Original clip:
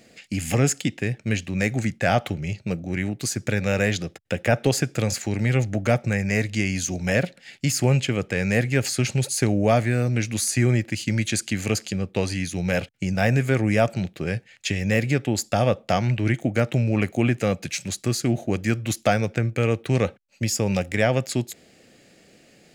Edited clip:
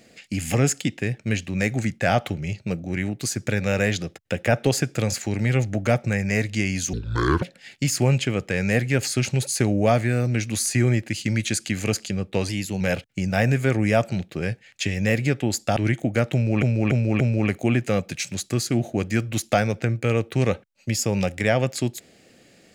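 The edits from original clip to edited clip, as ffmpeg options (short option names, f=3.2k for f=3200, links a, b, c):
-filter_complex "[0:a]asplit=9[a][b][c][d][e][f][g][h][i];[a]atrim=end=6.934[j];[b]atrim=start=6.93:end=7.24,asetpts=PTS-STARTPTS,asetrate=27783,aresample=44100[k];[c]atrim=start=7.236:end=12.314[l];[d]atrim=start=12.31:end=12.65,asetpts=PTS-STARTPTS,asetrate=48069,aresample=44100[m];[e]atrim=start=12.646:end=15.612[n];[f]atrim=start=16.168:end=17.032[o];[g]atrim=start=16.738:end=17.032[p];[h]atrim=start=16.738:end=17.032[q];[i]atrim=start=16.738[r];[j][k]acrossfade=d=0.004:c1=hsin:c2=hsin[s];[s][l]acrossfade=d=0.004:c1=hsin:c2=hsin[t];[t][m]acrossfade=d=0.004:c1=hsin:c2=hsin[u];[u][n]acrossfade=d=0.004:c1=hsin:c2=hsin[v];[v][o]acrossfade=d=0.004:c1=hsin:c2=hsin[w];[w][p]acrossfade=d=0.004:c1=hsin:c2=hsin[x];[x][q]acrossfade=d=0.004:c1=hsin:c2=hsin[y];[y][r]acrossfade=d=0.004:c1=hsin:c2=hsin"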